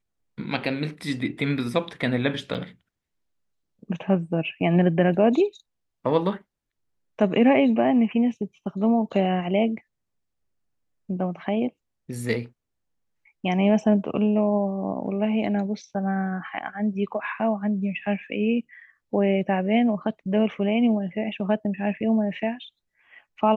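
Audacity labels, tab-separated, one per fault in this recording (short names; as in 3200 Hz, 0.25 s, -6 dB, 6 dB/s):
2.540000	2.550000	gap 6.9 ms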